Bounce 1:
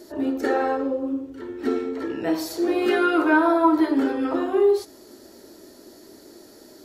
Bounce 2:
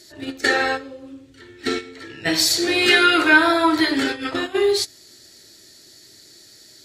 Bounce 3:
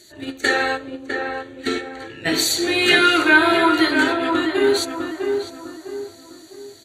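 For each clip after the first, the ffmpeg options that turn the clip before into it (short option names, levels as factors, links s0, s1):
-af "equalizer=f=125:t=o:w=1:g=11,equalizer=f=250:t=o:w=1:g=-8,equalizer=f=500:t=o:w=1:g=-5,equalizer=f=1000:t=o:w=1:g=-7,equalizer=f=2000:t=o:w=1:g=9,equalizer=f=4000:t=o:w=1:g=11,equalizer=f=8000:t=o:w=1:g=11,agate=range=0.282:threshold=0.0398:ratio=16:detection=peak,volume=1.88"
-filter_complex "[0:a]asuperstop=centerf=5200:order=4:qfactor=4.6,asplit=2[s0][s1];[s1]adelay=654,lowpass=f=1500:p=1,volume=0.631,asplit=2[s2][s3];[s3]adelay=654,lowpass=f=1500:p=1,volume=0.41,asplit=2[s4][s5];[s5]adelay=654,lowpass=f=1500:p=1,volume=0.41,asplit=2[s6][s7];[s7]adelay=654,lowpass=f=1500:p=1,volume=0.41,asplit=2[s8][s9];[s9]adelay=654,lowpass=f=1500:p=1,volume=0.41[s10];[s2][s4][s6][s8][s10]amix=inputs=5:normalize=0[s11];[s0][s11]amix=inputs=2:normalize=0"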